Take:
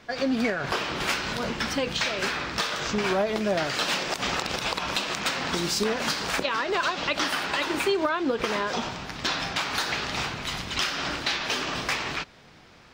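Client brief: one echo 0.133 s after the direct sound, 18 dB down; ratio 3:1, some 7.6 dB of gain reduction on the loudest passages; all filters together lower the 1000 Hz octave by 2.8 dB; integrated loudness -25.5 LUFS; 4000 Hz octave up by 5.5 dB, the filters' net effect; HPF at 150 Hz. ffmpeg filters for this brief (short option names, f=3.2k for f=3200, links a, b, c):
-af "highpass=150,equalizer=f=1k:t=o:g=-4,equalizer=f=4k:t=o:g=7,acompressor=threshold=-30dB:ratio=3,aecho=1:1:133:0.126,volume=5dB"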